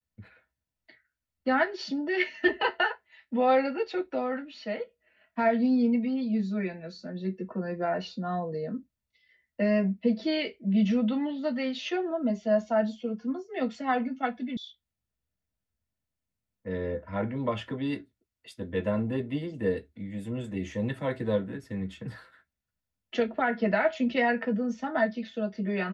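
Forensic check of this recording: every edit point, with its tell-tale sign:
0:14.57: cut off before it has died away

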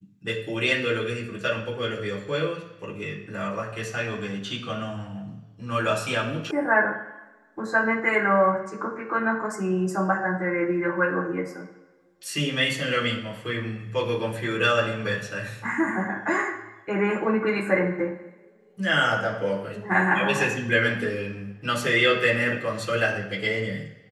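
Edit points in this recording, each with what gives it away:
0:06.51: cut off before it has died away

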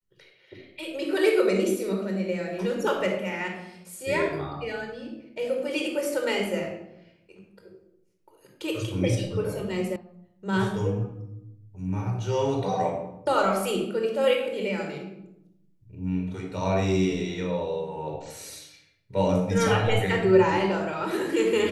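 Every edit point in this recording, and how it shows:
0:09.96: cut off before it has died away

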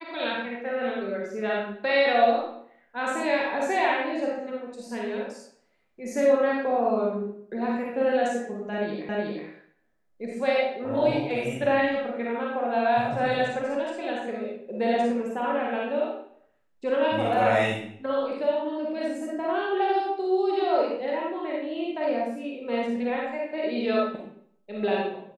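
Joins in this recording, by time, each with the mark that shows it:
0:09.09: the same again, the last 0.37 s

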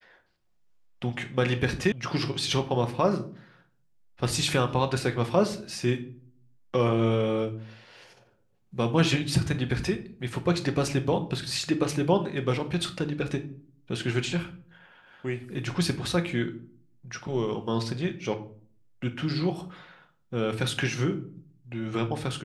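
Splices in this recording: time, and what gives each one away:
0:01.92: cut off before it has died away

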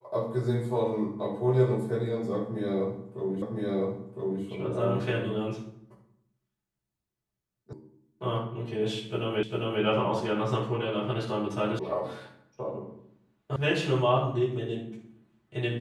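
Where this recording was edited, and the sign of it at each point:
0:03.42: the same again, the last 1.01 s
0:07.73: cut off before it has died away
0:09.43: the same again, the last 0.4 s
0:11.79: cut off before it has died away
0:13.56: cut off before it has died away

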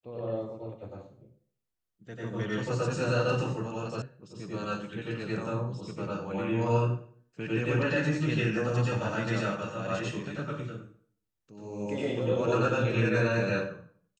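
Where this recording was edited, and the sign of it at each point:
0:04.02: cut off before it has died away

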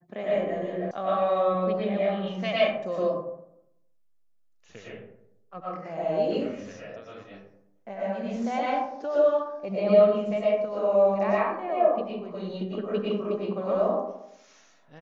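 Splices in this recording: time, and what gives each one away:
0:00.91: cut off before it has died away

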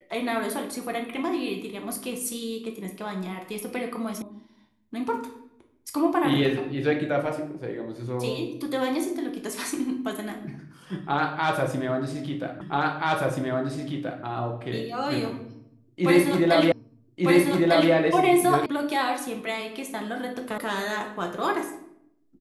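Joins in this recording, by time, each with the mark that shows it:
0:04.22: cut off before it has died away
0:12.61: the same again, the last 1.63 s
0:16.72: the same again, the last 1.2 s
0:18.66: cut off before it has died away
0:20.58: cut off before it has died away

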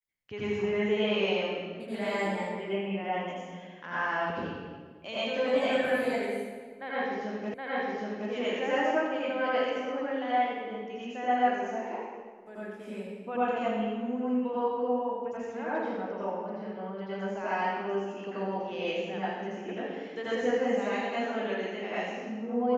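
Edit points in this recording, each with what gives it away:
0:07.54: the same again, the last 0.77 s

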